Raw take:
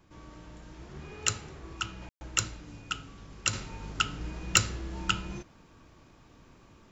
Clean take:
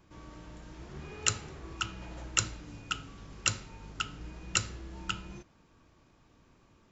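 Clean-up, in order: clip repair -7.5 dBFS; room tone fill 2.09–2.21; expander -49 dBFS, range -21 dB; gain 0 dB, from 3.53 s -6.5 dB

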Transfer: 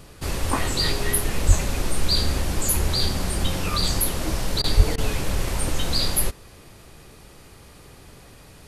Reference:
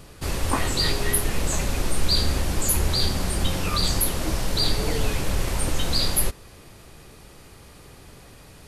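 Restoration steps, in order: 1.47–1.59 HPF 140 Hz 24 dB/oct; 4.76–4.88 HPF 140 Hz 24 dB/oct; interpolate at 4.62/4.96, 18 ms

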